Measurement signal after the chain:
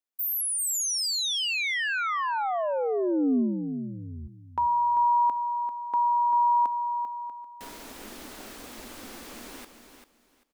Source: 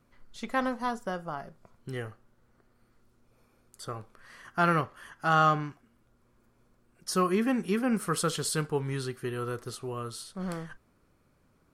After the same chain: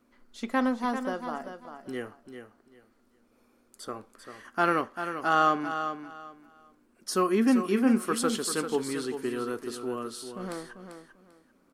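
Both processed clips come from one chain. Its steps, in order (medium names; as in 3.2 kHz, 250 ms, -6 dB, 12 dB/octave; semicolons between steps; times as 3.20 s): resonant low shelf 190 Hz -8 dB, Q 3; feedback delay 393 ms, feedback 22%, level -9 dB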